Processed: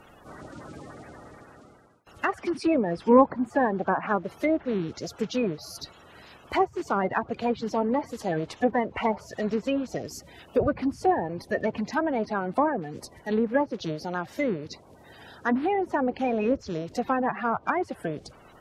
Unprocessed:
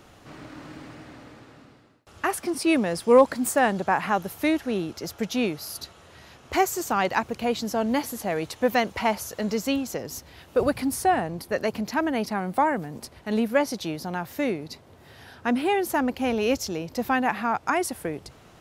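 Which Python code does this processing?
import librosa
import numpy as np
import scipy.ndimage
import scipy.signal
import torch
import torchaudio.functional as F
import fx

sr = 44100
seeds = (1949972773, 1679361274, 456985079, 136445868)

y = fx.spec_quant(x, sr, step_db=30)
y = fx.env_lowpass_down(y, sr, base_hz=1100.0, full_db=-20.0)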